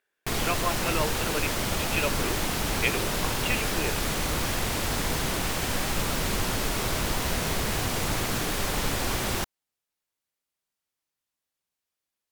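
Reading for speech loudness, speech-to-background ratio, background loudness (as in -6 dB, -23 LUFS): -32.5 LUFS, -5.0 dB, -27.5 LUFS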